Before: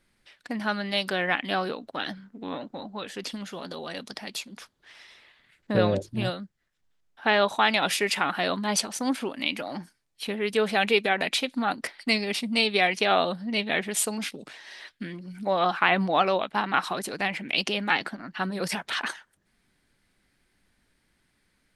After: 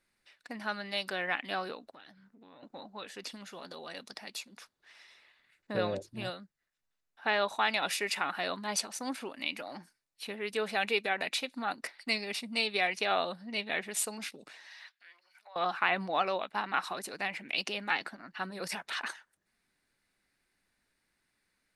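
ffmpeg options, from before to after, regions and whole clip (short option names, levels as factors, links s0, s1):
-filter_complex "[0:a]asettb=1/sr,asplit=3[s0][s1][s2];[s0]atrim=end=1.934[s3];[s1]atrim=start=1.93:end=2.63,asetpts=PTS-STARTPTS,afade=t=in:d=0.004:c=qsin,afade=t=out:st=0.696:d=0.004:c=qsin,equalizer=f=130:w=2.2:g=7,acompressor=threshold=0.00631:ratio=5:attack=3.2:release=140:knee=1:detection=peak[s4];[s2]atrim=start=2.626[s5];[s3][s4]acrossfade=d=0.004:c1=hsin:c2=qsin[s6];[s6][s5]acrossfade=d=0.004:c1=qsin:c2=hsin,asettb=1/sr,asplit=3[s7][s8][s9];[s7]atrim=end=14.674[s10];[s8]atrim=start=14.67:end=15.56,asetpts=PTS-STARTPTS,afade=t=in:d=0.004:c=qsin,afade=t=out:st=0.886:d=0.004:c=qsin,equalizer=f=9000:t=o:w=0.68:g=-7.5,acompressor=threshold=0.0141:ratio=5:attack=3.2:release=140:knee=1:detection=peak,highpass=f=750:w=0.5412,highpass=f=750:w=1.3066[s11];[s9]atrim=start=15.556[s12];[s10][s11]acrossfade=d=0.004:c1=hsin:c2=qsin[s13];[s13][s12]acrossfade=d=0.004:c1=qsin:c2=hsin,lowshelf=f=320:g=-9,bandreject=f=3200:w=12,volume=0.501"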